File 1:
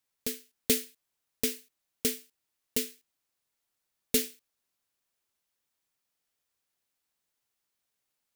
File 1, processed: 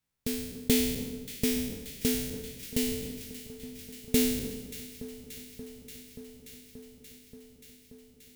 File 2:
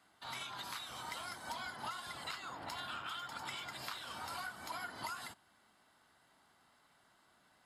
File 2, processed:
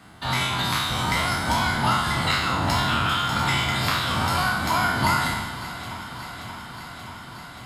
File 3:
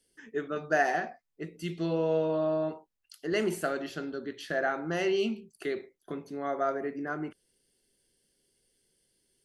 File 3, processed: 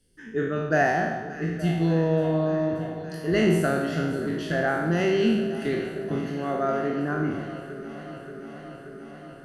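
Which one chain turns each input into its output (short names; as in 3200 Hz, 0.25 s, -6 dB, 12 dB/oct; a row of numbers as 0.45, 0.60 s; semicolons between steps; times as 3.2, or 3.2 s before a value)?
spectral trails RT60 1.04 s; tone controls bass +14 dB, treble -3 dB; echo with dull and thin repeats by turns 0.29 s, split 1400 Hz, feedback 88%, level -13 dB; normalise peaks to -9 dBFS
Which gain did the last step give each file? -3.0, +17.0, +1.0 dB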